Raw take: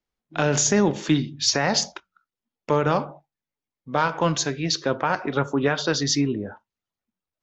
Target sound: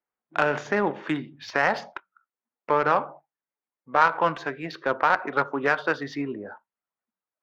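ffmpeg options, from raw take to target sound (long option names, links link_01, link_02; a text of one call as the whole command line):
ffmpeg -i in.wav -af "bandpass=frequency=1700:width_type=q:width=0.89:csg=0,adynamicsmooth=sensitivity=0.5:basefreq=1400,volume=7.5dB" out.wav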